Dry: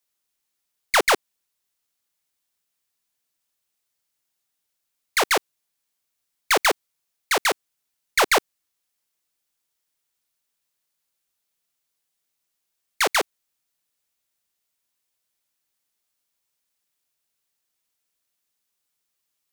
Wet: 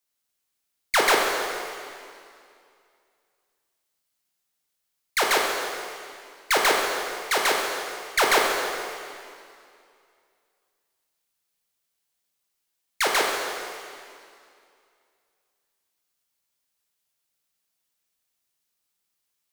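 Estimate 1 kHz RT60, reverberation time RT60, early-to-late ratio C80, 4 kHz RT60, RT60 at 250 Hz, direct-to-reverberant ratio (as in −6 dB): 2.4 s, 2.4 s, 2.5 dB, 2.3 s, 2.5 s, −0.5 dB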